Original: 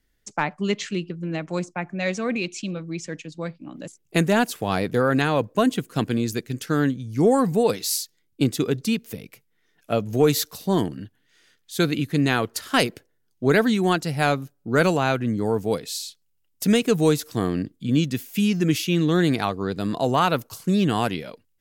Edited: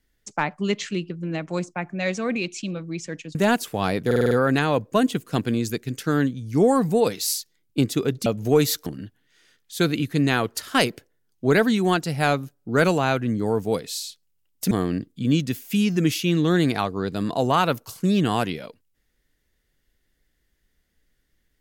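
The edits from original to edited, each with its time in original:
0:03.35–0:04.23: remove
0:04.94: stutter 0.05 s, 6 plays
0:08.89–0:09.94: remove
0:10.54–0:10.85: remove
0:16.70–0:17.35: remove

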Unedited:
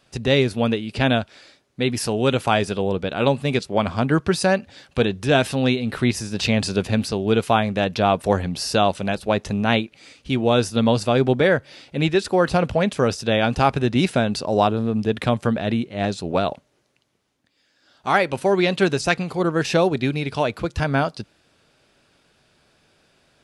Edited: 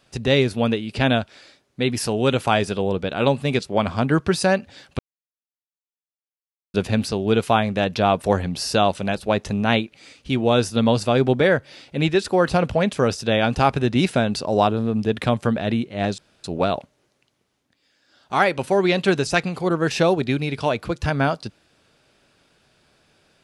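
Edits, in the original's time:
0:04.99–0:06.74: silence
0:16.18: splice in room tone 0.26 s

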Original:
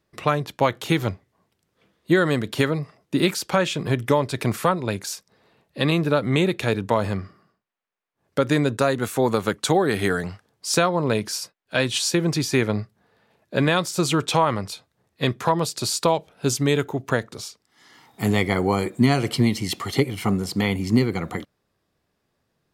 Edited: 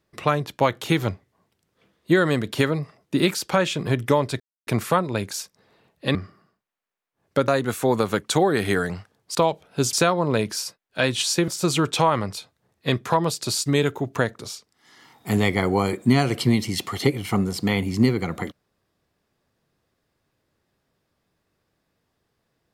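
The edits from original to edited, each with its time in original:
0:04.40: splice in silence 0.27 s
0:05.88–0:07.16: remove
0:08.49–0:08.82: remove
0:12.24–0:13.83: remove
0:16.01–0:16.59: move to 0:10.69

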